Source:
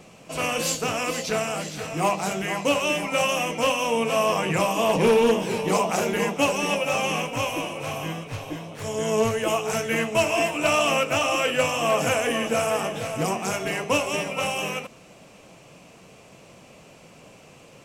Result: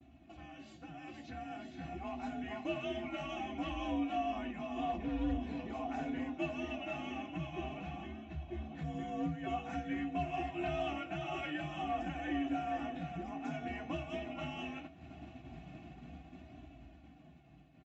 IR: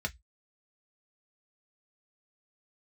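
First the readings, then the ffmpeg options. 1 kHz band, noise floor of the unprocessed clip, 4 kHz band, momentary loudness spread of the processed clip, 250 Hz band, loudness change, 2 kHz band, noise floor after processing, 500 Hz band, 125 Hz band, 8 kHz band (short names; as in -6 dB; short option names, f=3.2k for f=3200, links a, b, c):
-14.5 dB, -50 dBFS, -21.0 dB, 15 LU, -9.0 dB, -16.0 dB, -19.0 dB, -58 dBFS, -19.5 dB, -12.0 dB, under -30 dB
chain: -filter_complex "[0:a]firequalizer=gain_entry='entry(150,0);entry(360,-25);entry(690,-16);entry(1000,-24);entry(1600,-16);entry(3700,-16);entry(5400,-29)':delay=0.05:min_phase=1,acompressor=threshold=-51dB:ratio=5,afreqshift=54,agate=range=-33dB:threshold=-53dB:ratio=3:detection=peak,dynaudnorm=f=150:g=21:m=11.5dB,lowshelf=f=160:g=5,aecho=1:1:2.7:0.7,aecho=1:1:719:0.075,asplit=2[a][b];[1:a]atrim=start_sample=2205[c];[b][c]afir=irnorm=-1:irlink=0,volume=-8dB[d];[a][d]amix=inputs=2:normalize=0,aresample=16000,aresample=44100,flanger=delay=3:depth=8.5:regen=-45:speed=0.24:shape=sinusoidal,volume=3.5dB"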